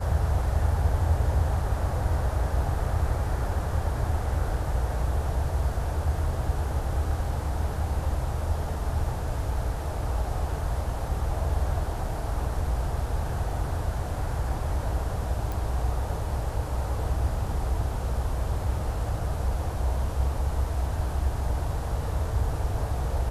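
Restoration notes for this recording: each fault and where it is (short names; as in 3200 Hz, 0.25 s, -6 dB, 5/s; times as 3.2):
15.52 pop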